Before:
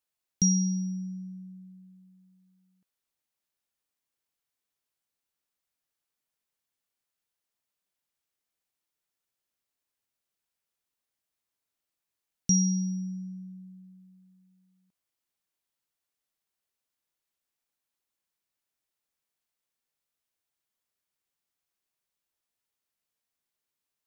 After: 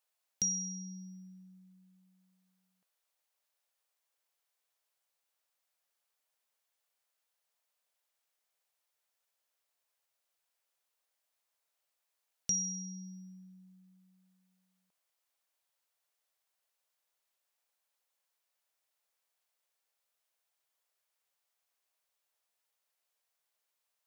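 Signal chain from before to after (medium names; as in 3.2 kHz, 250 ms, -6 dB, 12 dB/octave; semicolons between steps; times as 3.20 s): resonant low shelf 390 Hz -12 dB, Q 1.5; compression 1.5:1, threshold -46 dBFS, peak gain reduction 8 dB; trim +2.5 dB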